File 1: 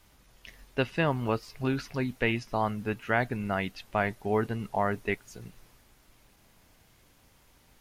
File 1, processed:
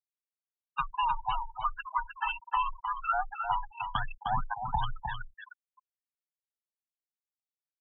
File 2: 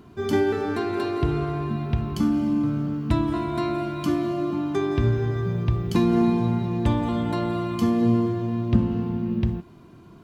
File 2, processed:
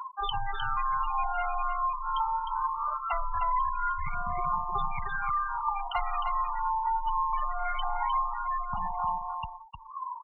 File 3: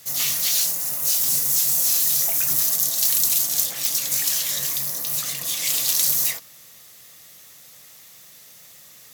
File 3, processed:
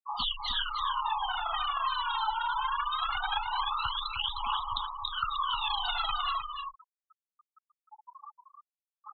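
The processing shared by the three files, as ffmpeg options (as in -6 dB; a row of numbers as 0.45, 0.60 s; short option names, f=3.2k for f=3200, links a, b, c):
-filter_complex "[0:a]aeval=exprs='clip(val(0),-1,0.112)':c=same,asuperstop=centerf=2100:order=4:qfactor=0.8,acontrast=55,asuperpass=centerf=1600:order=12:qfactor=0.72,aeval=exprs='0.158*(cos(1*acos(clip(val(0)/0.158,-1,1)))-cos(1*PI/2))+0.0355*(cos(5*acos(clip(val(0)/0.158,-1,1)))-cos(5*PI/2))+0.00126*(cos(6*acos(clip(val(0)/0.158,-1,1)))-cos(6*PI/2))+0.02*(cos(8*acos(clip(val(0)/0.158,-1,1)))-cos(8*PI/2))':c=same,afreqshift=17,aphaser=in_gain=1:out_gain=1:delay=2.3:decay=0.77:speed=0.22:type=triangular,aeval=exprs='0.447*(cos(1*acos(clip(val(0)/0.447,-1,1)))-cos(1*PI/2))+0.0178*(cos(2*acos(clip(val(0)/0.447,-1,1)))-cos(2*PI/2))+0.0251*(cos(5*acos(clip(val(0)/0.447,-1,1)))-cos(5*PI/2))+0.0112*(cos(6*acos(clip(val(0)/0.447,-1,1)))-cos(6*PI/2))+0.00447*(cos(8*acos(clip(val(0)/0.447,-1,1)))-cos(8*PI/2))':c=same,asplit=2[a][b];[b]adelay=74,lowpass=f=1.5k:p=1,volume=-19.5dB,asplit=2[c][d];[d]adelay=74,lowpass=f=1.5k:p=1,volume=0.45,asplit=2[e][f];[f]adelay=74,lowpass=f=1.5k:p=1,volume=0.45[g];[c][e][g]amix=inputs=3:normalize=0[h];[a][h]amix=inputs=2:normalize=0,acompressor=threshold=-31dB:ratio=8,afftfilt=real='re*gte(hypot(re,im),0.0398)':imag='im*gte(hypot(re,im),0.0398)':win_size=1024:overlap=0.75,asplit=2[i][j];[j]aecho=0:1:307:0.473[k];[i][k]amix=inputs=2:normalize=0,volume=4dB"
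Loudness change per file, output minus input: -3.0, -6.5, -12.5 LU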